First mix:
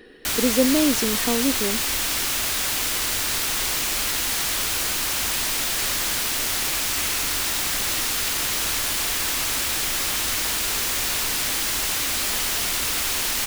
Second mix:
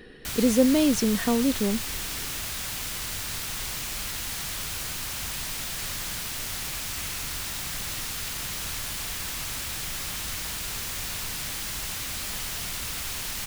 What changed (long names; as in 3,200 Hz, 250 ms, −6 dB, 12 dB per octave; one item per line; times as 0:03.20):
background −9.0 dB
master: add low shelf with overshoot 220 Hz +7 dB, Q 1.5